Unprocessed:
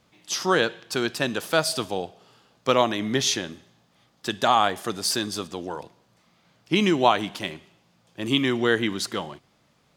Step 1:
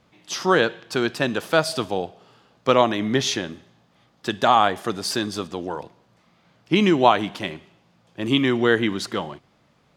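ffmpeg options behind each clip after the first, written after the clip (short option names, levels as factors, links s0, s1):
-af "highshelf=f=4500:g=-9.5,volume=1.5"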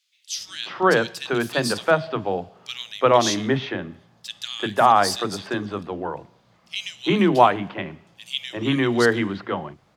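-filter_complex "[0:a]acrossover=split=280|2800[s0][s1][s2];[s1]adelay=350[s3];[s0]adelay=380[s4];[s4][s3][s2]amix=inputs=3:normalize=0,volume=1.19"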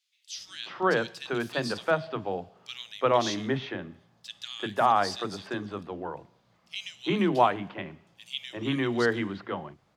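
-filter_complex "[0:a]acrossover=split=6100[s0][s1];[s1]acompressor=threshold=0.00501:ratio=4:attack=1:release=60[s2];[s0][s2]amix=inputs=2:normalize=0,volume=0.447"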